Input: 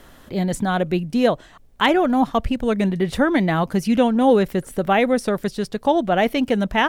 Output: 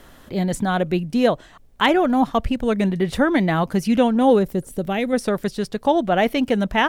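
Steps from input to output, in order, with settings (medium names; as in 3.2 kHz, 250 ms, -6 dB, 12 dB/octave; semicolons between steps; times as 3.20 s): 4.38–5.12 s: peaking EQ 2.7 kHz -> 840 Hz -11 dB 2.2 oct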